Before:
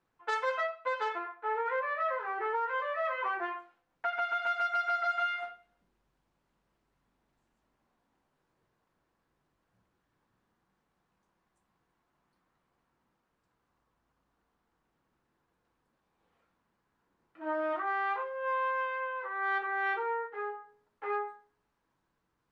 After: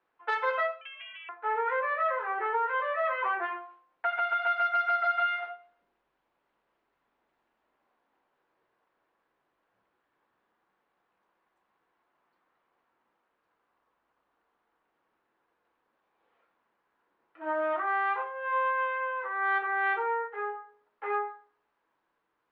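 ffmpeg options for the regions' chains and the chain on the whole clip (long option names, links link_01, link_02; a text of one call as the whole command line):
ffmpeg -i in.wav -filter_complex "[0:a]asettb=1/sr,asplit=3[link_01][link_02][link_03];[link_01]atrim=end=0.814[link_04];[link_02]atrim=start=0.81:end=1.29,asetpts=PTS-STARTPTS,afade=type=in:duration=0.004:curve=qsin,afade=type=out:start_time=0.476:duration=0.004:curve=qsin,lowpass=frequency=3100:width_type=q:width=0.5098,lowpass=frequency=3100:width_type=q:width=0.6013,lowpass=frequency=3100:width_type=q:width=0.9,lowpass=frequency=3100:width_type=q:width=2.563,afreqshift=-3700,acompressor=threshold=-44dB:ratio=8:attack=3.2:release=140:knee=1:detection=peak[link_05];[link_03]atrim=start=1.286[link_06];[link_04][link_05]acrossfade=duration=0.004:curve1=hsin:curve2=qsin[link_07];[link_07][link_06]acrossfade=duration=0.004:curve1=qsin:curve2=hsin,acrossover=split=320 3800:gain=0.126 1 0.0708[link_08][link_09][link_10];[link_08][link_09][link_10]amix=inputs=3:normalize=0,bandreject=frequency=87.89:width_type=h:width=4,bandreject=frequency=175.78:width_type=h:width=4,bandreject=frequency=263.67:width_type=h:width=4,bandreject=frequency=351.56:width_type=h:width=4,bandreject=frequency=439.45:width_type=h:width=4,bandreject=frequency=527.34:width_type=h:width=4,bandreject=frequency=615.23:width_type=h:width=4,bandreject=frequency=703.12:width_type=h:width=4,bandreject=frequency=791.01:width_type=h:width=4,bandreject=frequency=878.9:width_type=h:width=4,bandreject=frequency=966.79:width_type=h:width=4,bandreject=frequency=1054.68:width_type=h:width=4,bandreject=frequency=1142.57:width_type=h:width=4,bandreject=frequency=1230.46:width_type=h:width=4,bandreject=frequency=1318.35:width_type=h:width=4,volume=4dB" out.wav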